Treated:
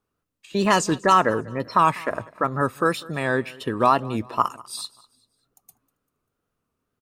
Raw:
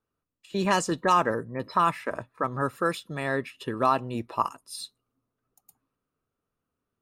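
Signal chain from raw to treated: wow and flutter 92 cents; feedback echo 0.196 s, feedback 41%, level -22.5 dB; gain +5 dB

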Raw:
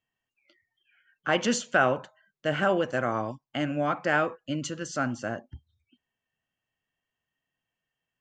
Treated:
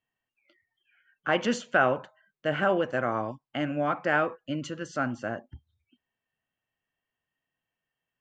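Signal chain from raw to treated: tone controls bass -2 dB, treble -10 dB

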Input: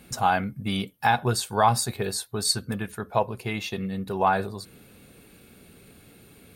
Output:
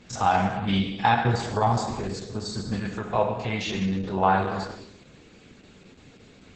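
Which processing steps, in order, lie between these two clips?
stepped spectrum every 50 ms; 1.24–2.73 EQ curve 220 Hz 0 dB, 380 Hz -2 dB, 5300 Hz -10 dB; non-linear reverb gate 0.44 s falling, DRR 3 dB; gain +2 dB; Opus 10 kbps 48000 Hz

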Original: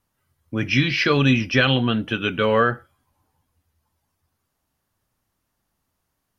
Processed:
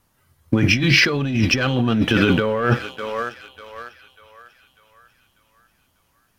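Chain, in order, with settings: dynamic EQ 2800 Hz, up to -7 dB, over -35 dBFS, Q 0.78; thinning echo 0.595 s, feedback 52%, high-pass 650 Hz, level -18 dB; sample leveller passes 1; negative-ratio compressor -24 dBFS, ratio -1; gain +6 dB

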